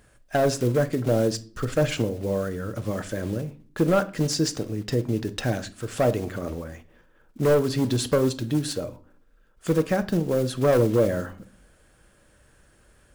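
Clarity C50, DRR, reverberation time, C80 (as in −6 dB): 17.5 dB, 10.0 dB, 0.45 s, 23.0 dB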